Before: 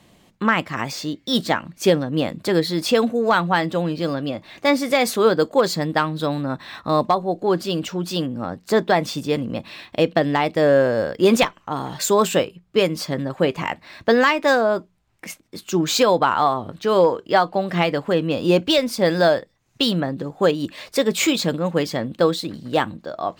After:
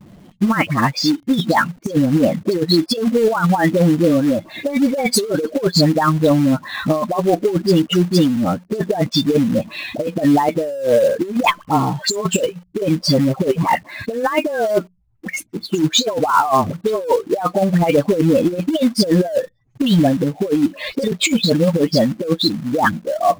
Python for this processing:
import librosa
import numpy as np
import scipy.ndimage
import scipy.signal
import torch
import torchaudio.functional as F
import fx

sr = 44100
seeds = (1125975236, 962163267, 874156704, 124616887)

p1 = fx.spec_expand(x, sr, power=2.1)
p2 = fx.dispersion(p1, sr, late='highs', ms=67.0, hz=1000.0)
p3 = fx.quant_companded(p2, sr, bits=4)
p4 = p2 + (p3 * librosa.db_to_amplitude(-4.5))
p5 = fx.over_compress(p4, sr, threshold_db=-17.0, ratio=-0.5)
y = p5 * librosa.db_to_amplitude(3.0)